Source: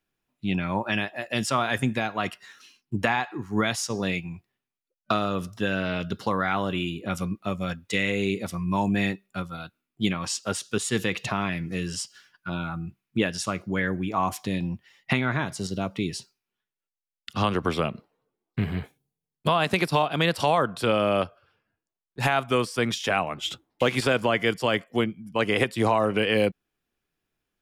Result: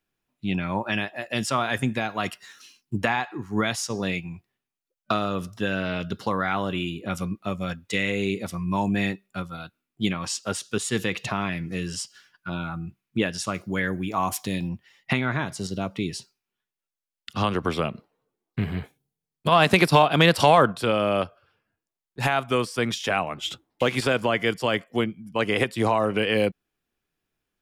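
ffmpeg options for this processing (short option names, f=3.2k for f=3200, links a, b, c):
-filter_complex "[0:a]asettb=1/sr,asplit=3[a][b][c];[a]atrim=end=2.094[d];[b]atrim=start=2.09:end=2.98,asetpts=PTS-STARTPTS,afade=t=in:d=0.004:c=qsin,afade=t=out:st=0.886:d=0.004:c=qsin,bass=f=250:g=1,treble=f=4k:g=6[e];[c]atrim=start=2.976[f];[d][e]acrossfade=d=0.004:c1=hsin:c2=qsin[g];[g][f]acrossfade=d=0.004:c1=qsin:c2=hsin,asettb=1/sr,asplit=3[h][i][j];[h]atrim=end=13.544[k];[i]atrim=start=13.54:end=14.69,asetpts=PTS-STARTPTS,afade=t=in:d=0.004:c=qsin,afade=t=out:st=1.146:d=0.004:c=qsin,aemphasis=mode=production:type=cd[l];[j]atrim=start=14.686[m];[k][l]acrossfade=d=0.004:c1=hsin:c2=qsin[n];[n][m]acrossfade=d=0.004:c1=qsin:c2=hsin,asplit=3[o][p][q];[o]afade=t=out:st=19.51:d=0.02[r];[p]acontrast=59,afade=t=in:st=19.51:d=0.02,afade=t=out:st=20.71:d=0.02[s];[q]afade=t=in:st=20.71:d=0.02[t];[r][s][t]amix=inputs=3:normalize=0"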